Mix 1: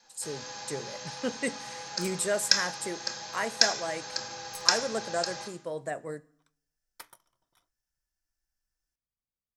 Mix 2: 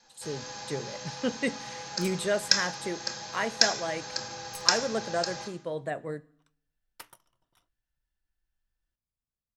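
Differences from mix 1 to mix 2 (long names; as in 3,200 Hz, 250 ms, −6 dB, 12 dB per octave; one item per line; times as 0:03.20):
speech: add high shelf with overshoot 4,500 Hz −6.5 dB, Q 3
second sound: remove Butterworth band-reject 2,800 Hz, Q 7.2
master: add low-shelf EQ 280 Hz +6 dB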